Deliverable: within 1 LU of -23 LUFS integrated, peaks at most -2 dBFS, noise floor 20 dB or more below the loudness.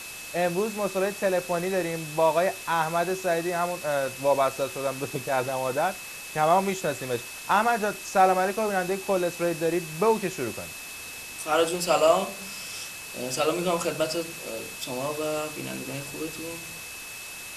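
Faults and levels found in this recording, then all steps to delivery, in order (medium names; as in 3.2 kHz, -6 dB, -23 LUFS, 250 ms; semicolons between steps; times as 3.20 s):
steady tone 2.6 kHz; tone level -41 dBFS; noise floor -40 dBFS; noise floor target -47 dBFS; loudness -27.0 LUFS; peak level -7.5 dBFS; loudness target -23.0 LUFS
-> band-stop 2.6 kHz, Q 30; noise print and reduce 7 dB; trim +4 dB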